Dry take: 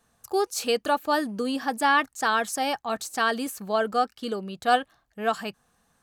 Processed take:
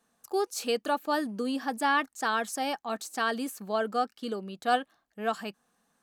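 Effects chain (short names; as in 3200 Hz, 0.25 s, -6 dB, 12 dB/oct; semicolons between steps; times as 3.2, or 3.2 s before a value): resonant low shelf 150 Hz -11 dB, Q 1.5; gain -5 dB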